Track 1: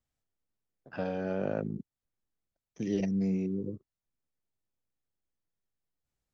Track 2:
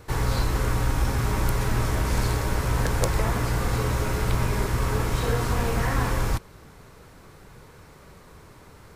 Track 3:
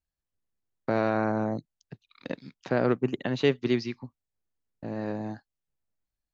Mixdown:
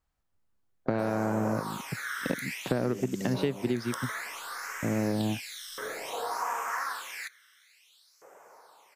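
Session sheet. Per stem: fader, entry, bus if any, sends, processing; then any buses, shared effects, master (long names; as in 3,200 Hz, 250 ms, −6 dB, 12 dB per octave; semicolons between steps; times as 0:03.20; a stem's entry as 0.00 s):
−4.5 dB, 0.00 s, no send, parametric band 1,100 Hz +14.5 dB 2.3 octaves
−3.0 dB, 0.90 s, no send, high-pass filter 250 Hz 6 dB per octave; all-pass phaser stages 12, 0.57 Hz, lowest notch 770–4,000 Hz; auto-filter high-pass saw up 0.41 Hz 530–4,200 Hz
+2.0 dB, 0.00 s, no send, low-shelf EQ 400 Hz +7 dB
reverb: not used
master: downward compressor 16 to 1, threshold −24 dBFS, peak gain reduction 14 dB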